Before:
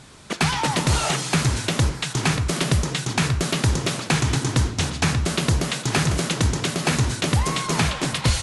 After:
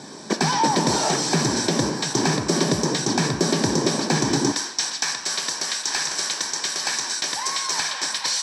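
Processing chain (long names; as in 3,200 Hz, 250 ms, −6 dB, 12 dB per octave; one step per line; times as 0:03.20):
high-pass filter 260 Hz 12 dB per octave, from 0:04.52 1,400 Hz
downward compressor 2 to 1, threshold −28 dBFS, peak gain reduction 6 dB
soft clipping −20.5 dBFS, distortion −17 dB
convolution reverb RT60 0.75 s, pre-delay 3 ms, DRR 10 dB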